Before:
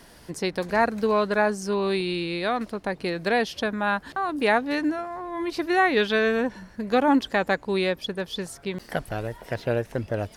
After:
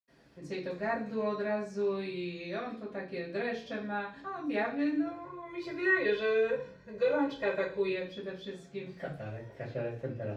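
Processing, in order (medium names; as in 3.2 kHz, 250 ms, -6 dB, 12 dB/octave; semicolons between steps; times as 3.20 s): 4.97–7.81 s: comb 2 ms, depth 96%; reverberation RT60 0.50 s, pre-delay 76 ms, DRR -60 dB; trim -3.5 dB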